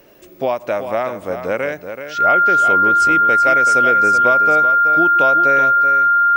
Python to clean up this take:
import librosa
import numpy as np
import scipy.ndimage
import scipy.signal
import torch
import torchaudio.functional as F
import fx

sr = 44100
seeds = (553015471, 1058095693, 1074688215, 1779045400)

y = fx.notch(x, sr, hz=1400.0, q=30.0)
y = fx.fix_echo_inverse(y, sr, delay_ms=379, level_db=-9.0)